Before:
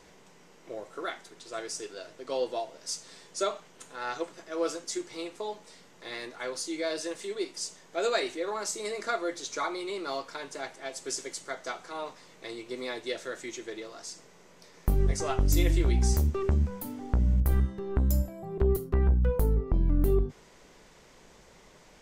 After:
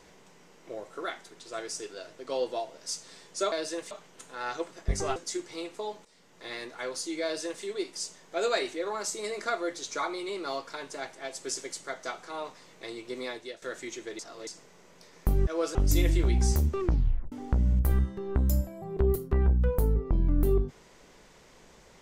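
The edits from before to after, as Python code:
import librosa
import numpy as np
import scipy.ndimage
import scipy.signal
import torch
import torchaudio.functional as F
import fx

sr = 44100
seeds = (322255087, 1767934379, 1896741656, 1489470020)

y = fx.edit(x, sr, fx.swap(start_s=4.49, length_s=0.28, other_s=15.08, other_length_s=0.28),
    fx.fade_in_from(start_s=5.66, length_s=0.41, floor_db=-15.0),
    fx.duplicate(start_s=6.85, length_s=0.39, to_s=3.52),
    fx.fade_out_to(start_s=12.85, length_s=0.38, floor_db=-15.5),
    fx.reverse_span(start_s=13.8, length_s=0.28),
    fx.tape_stop(start_s=16.42, length_s=0.51), tone=tone)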